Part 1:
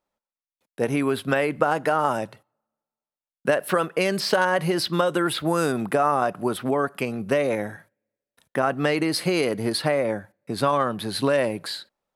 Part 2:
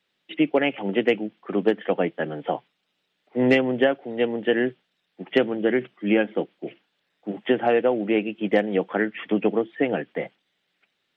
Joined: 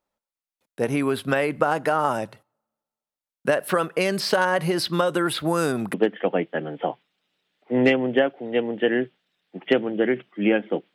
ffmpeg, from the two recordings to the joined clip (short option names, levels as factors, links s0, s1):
-filter_complex "[0:a]apad=whole_dur=10.94,atrim=end=10.94,atrim=end=5.942[s0];[1:a]atrim=start=1.588:end=6.59[s1];[s0][s1]acrossfade=d=0.004:c1=hsin:c2=hsin"